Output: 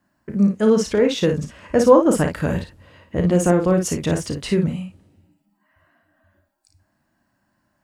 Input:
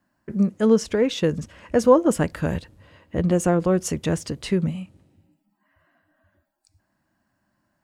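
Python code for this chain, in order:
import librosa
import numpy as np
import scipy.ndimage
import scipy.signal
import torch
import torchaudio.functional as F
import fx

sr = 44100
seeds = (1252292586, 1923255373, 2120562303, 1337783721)

y = fx.room_early_taps(x, sr, ms=(34, 55), db=(-9.0, -6.5))
y = y * librosa.db_to_amplitude(2.0)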